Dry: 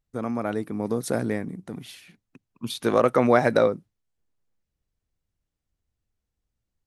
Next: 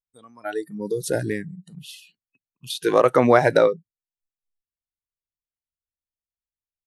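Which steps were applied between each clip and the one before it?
noise reduction from a noise print of the clip's start 27 dB
level +3.5 dB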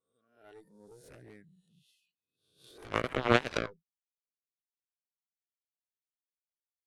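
peak hold with a rise ahead of every peak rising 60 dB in 0.58 s
harmonic generator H 3 −9 dB, 4 −31 dB, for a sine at 0.5 dBFS
rotating-speaker cabinet horn 1.2 Hz, later 7 Hz, at 0:01.91
level −2 dB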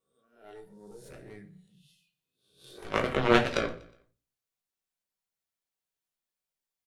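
in parallel at −6.5 dB: soft clipping −24 dBFS, distortion −5 dB
on the sum: repeating echo 121 ms, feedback 41%, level −21 dB
rectangular room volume 160 cubic metres, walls furnished, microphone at 1.1 metres

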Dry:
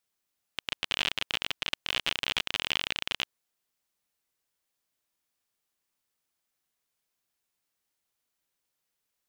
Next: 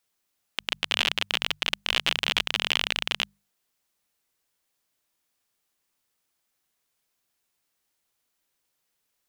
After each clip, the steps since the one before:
mains-hum notches 50/100/150/200 Hz
level +5 dB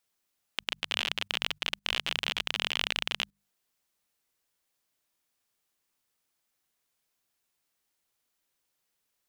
output level in coarse steps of 16 dB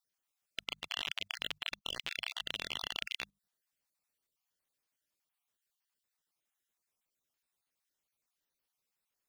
time-frequency cells dropped at random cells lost 34%
level −6 dB

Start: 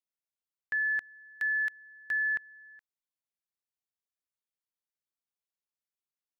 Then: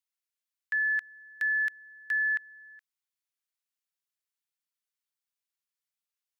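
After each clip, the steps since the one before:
high-pass filter 1,300 Hz 12 dB per octave
level +3 dB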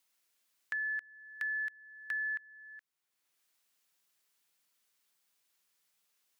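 multiband upward and downward compressor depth 70%
level −7.5 dB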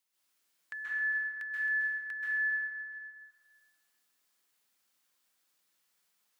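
dense smooth reverb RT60 1.9 s, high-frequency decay 0.55×, pre-delay 120 ms, DRR −7.5 dB
level −6 dB

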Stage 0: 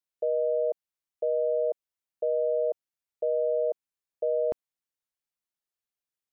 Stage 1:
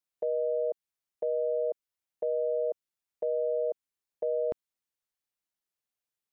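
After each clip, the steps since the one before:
dynamic equaliser 710 Hz, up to −4 dB, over −41 dBFS, Q 1.1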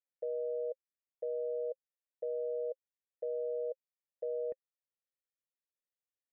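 formant resonators in series e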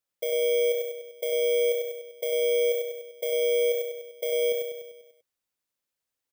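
samples in bit-reversed order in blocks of 16 samples
repeating echo 98 ms, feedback 56%, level −5 dB
level +8 dB

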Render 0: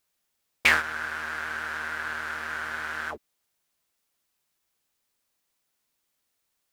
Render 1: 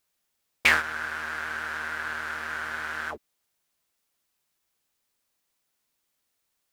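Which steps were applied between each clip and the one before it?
no processing that can be heard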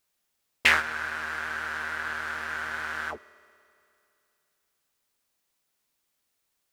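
convolution reverb RT60 2.7 s, pre-delay 3 ms, DRR 17.5 dB
highs frequency-modulated by the lows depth 0.24 ms

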